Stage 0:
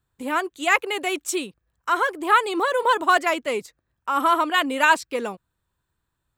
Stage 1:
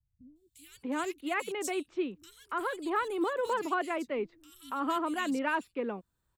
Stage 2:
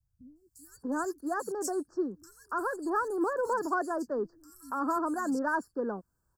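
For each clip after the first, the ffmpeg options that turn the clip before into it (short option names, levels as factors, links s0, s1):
-filter_complex "[0:a]acrossover=split=360[s0][s1];[s1]acompressor=threshold=0.00251:ratio=1.5[s2];[s0][s2]amix=inputs=2:normalize=0,aeval=exprs='0.133*(cos(1*acos(clip(val(0)/0.133,-1,1)))-cos(1*PI/2))+0.00596*(cos(3*acos(clip(val(0)/0.133,-1,1)))-cos(3*PI/2))':c=same,acrossover=split=150|3200[s3][s4][s5];[s5]adelay=360[s6];[s4]adelay=640[s7];[s3][s7][s6]amix=inputs=3:normalize=0"
-filter_complex "[0:a]asplit=2[s0][s1];[s1]asoftclip=type=tanh:threshold=0.02,volume=0.316[s2];[s0][s2]amix=inputs=2:normalize=0,asuperstop=centerf=2800:order=20:qfactor=1"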